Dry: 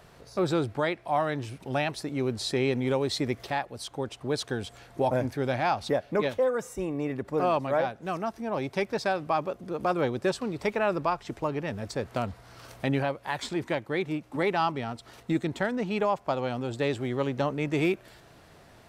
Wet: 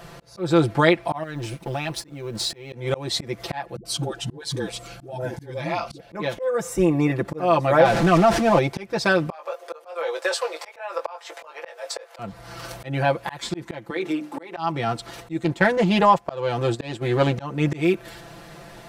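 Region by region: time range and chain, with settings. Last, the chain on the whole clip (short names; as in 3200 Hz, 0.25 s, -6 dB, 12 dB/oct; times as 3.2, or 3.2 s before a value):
1.23–2.73 G.711 law mismatch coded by A + compressor 12:1, threshold -32 dBFS
3.76–6 dispersion highs, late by 91 ms, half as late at 310 Hz + compressor 4:1, threshold -31 dBFS + cascading phaser rising 1 Hz
7.85–8.59 zero-crossing step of -35 dBFS + air absorption 51 m + fast leveller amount 50%
9.31–12.19 elliptic high-pass 500 Hz, stop band 60 dB + doubler 19 ms -6.5 dB + compressor 8:1, threshold -28 dBFS
13.9–14.57 HPF 240 Hz 24 dB/oct + compressor 5:1, threshold -32 dBFS + notches 50/100/150/200/250/300/350/400/450 Hz
15.44–17.36 gate -36 dBFS, range -9 dB + Doppler distortion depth 0.16 ms
whole clip: comb 5.9 ms, depth 87%; auto swell 0.344 s; gain +9 dB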